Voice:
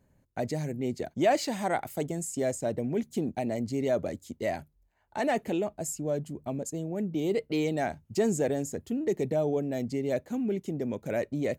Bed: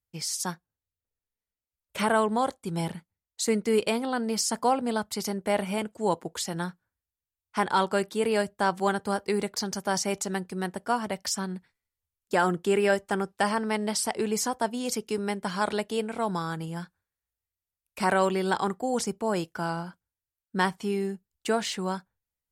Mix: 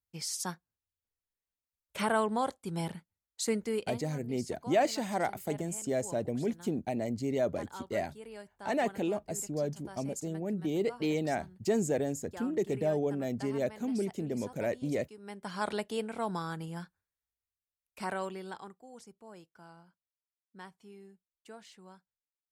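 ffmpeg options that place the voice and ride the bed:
-filter_complex "[0:a]adelay=3500,volume=-2.5dB[a];[1:a]volume=11dB,afade=t=out:st=3.48:d=0.58:silence=0.149624,afade=t=in:st=15.19:d=0.5:silence=0.158489,afade=t=out:st=17.15:d=1.64:silence=0.125893[b];[a][b]amix=inputs=2:normalize=0"

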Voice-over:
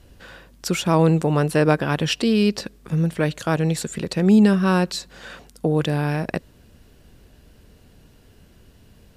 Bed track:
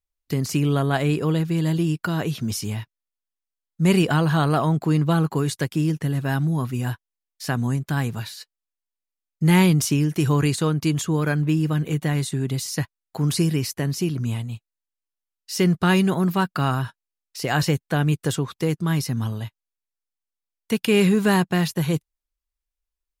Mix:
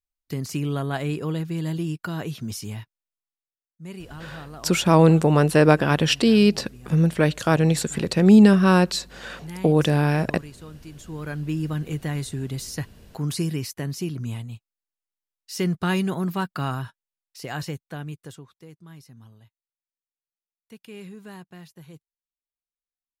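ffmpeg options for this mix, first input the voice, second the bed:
-filter_complex "[0:a]adelay=4000,volume=2dB[a];[1:a]volume=10dB,afade=t=out:st=3.17:d=0.44:silence=0.177828,afade=t=in:st=10.95:d=0.68:silence=0.16788,afade=t=out:st=16.63:d=1.94:silence=0.125893[b];[a][b]amix=inputs=2:normalize=0"

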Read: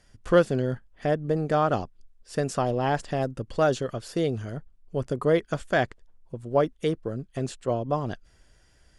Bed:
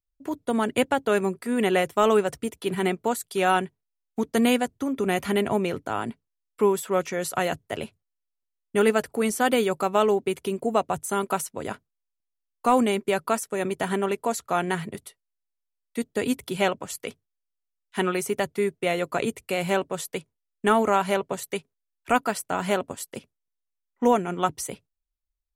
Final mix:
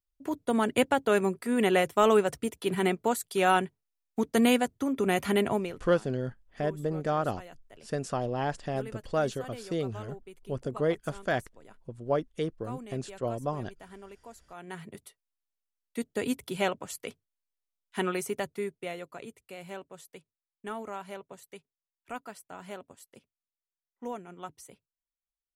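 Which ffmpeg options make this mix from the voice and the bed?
-filter_complex "[0:a]adelay=5550,volume=-5.5dB[a];[1:a]volume=15.5dB,afade=t=out:st=5.45:d=0.38:silence=0.0944061,afade=t=in:st=14.56:d=0.71:silence=0.133352,afade=t=out:st=18.14:d=1.01:silence=0.237137[b];[a][b]amix=inputs=2:normalize=0"

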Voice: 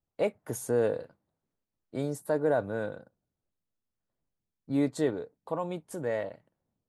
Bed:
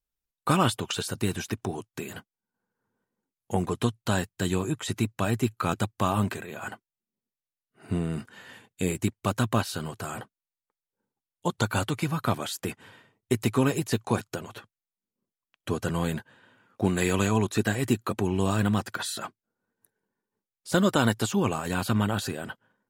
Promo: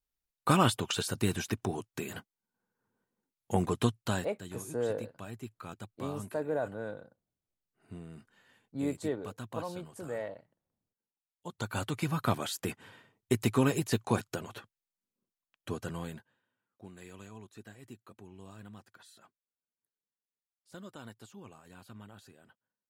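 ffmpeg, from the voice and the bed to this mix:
-filter_complex "[0:a]adelay=4050,volume=-6dB[a];[1:a]volume=12.5dB,afade=t=out:st=3.92:d=0.47:silence=0.16788,afade=t=in:st=11.43:d=0.73:silence=0.188365,afade=t=out:st=15.07:d=1.38:silence=0.0794328[b];[a][b]amix=inputs=2:normalize=0"

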